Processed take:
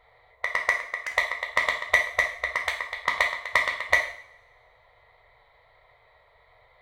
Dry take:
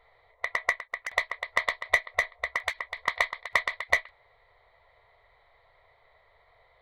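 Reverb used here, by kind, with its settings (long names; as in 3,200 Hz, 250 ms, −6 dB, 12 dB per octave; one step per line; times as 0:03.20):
coupled-rooms reverb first 0.56 s, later 1.7 s, from −24 dB, DRR 2 dB
level +1.5 dB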